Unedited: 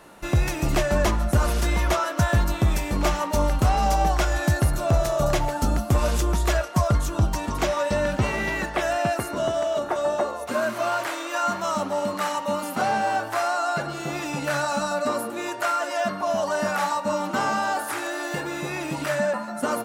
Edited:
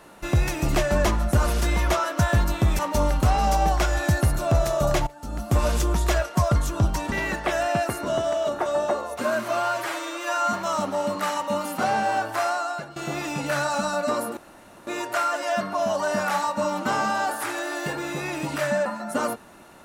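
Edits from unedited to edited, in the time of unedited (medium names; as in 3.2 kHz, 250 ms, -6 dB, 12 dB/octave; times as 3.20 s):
2.79–3.18 s: delete
5.46–5.95 s: fade in quadratic, from -19.5 dB
7.51–8.42 s: delete
10.87–11.51 s: stretch 1.5×
13.45–13.94 s: fade out, to -15.5 dB
15.35 s: insert room tone 0.50 s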